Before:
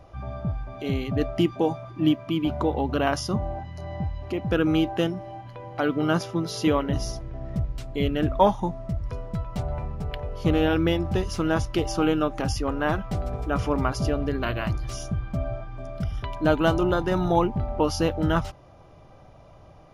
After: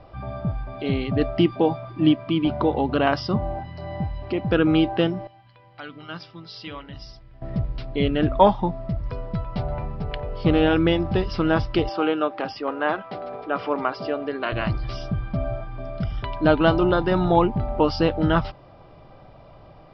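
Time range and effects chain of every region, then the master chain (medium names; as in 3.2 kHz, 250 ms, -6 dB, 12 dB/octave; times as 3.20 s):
5.27–7.42 s: amplifier tone stack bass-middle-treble 5-5-5 + de-hum 76.34 Hz, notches 11
11.89–14.52 s: high-pass 370 Hz + distance through air 120 m
whole clip: steep low-pass 5.2 kHz 96 dB/octave; peaking EQ 73 Hz -6.5 dB 0.64 oct; trim +3.5 dB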